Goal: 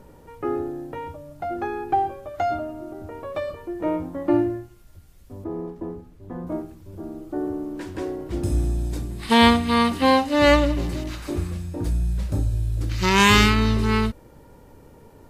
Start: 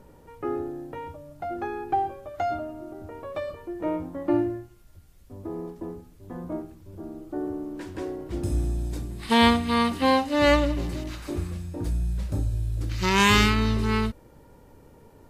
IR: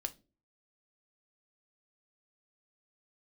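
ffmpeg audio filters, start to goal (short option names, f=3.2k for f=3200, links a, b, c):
-filter_complex "[0:a]asettb=1/sr,asplit=3[a][b][c];[a]atrim=end=5.444[d];[b]atrim=start=5.44:end=6.47,asetpts=PTS-STARTPTS,afade=t=in:d=0.004:c=qsin,afade=t=out:st=1.026:d=0.004:c=qsin,highshelf=f=3.5k:g=-11[e];[c]atrim=start=6.466[f];[d][e]acrossfade=d=0.004:c1=hsin:c2=qsin[g];[g][f]acrossfade=d=0.004:c1=qsin:c2=hsin,volume=3.5dB"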